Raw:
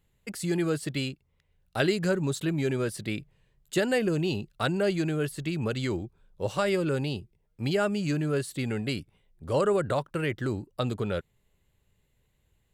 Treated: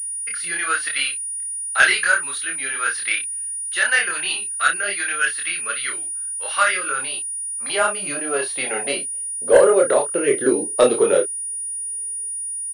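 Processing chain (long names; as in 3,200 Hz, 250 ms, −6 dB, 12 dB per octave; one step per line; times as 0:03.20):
0:09.56–0:10.28: downward compressor 6 to 1, threshold −27 dBFS, peak gain reduction 6.5 dB
rotating-speaker cabinet horn 0.9 Hz
multi-voice chorus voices 4, 0.79 Hz, delay 25 ms, depth 3.7 ms
0:07.19–0:07.70: phaser with its sweep stopped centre 570 Hz, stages 8
high-pass filter sweep 1,500 Hz → 420 Hz, 0:06.52–0:09.96
sine wavefolder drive 5 dB, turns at −13 dBFS
double-tracking delay 30 ms −8 dB
switching amplifier with a slow clock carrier 9,600 Hz
level +7 dB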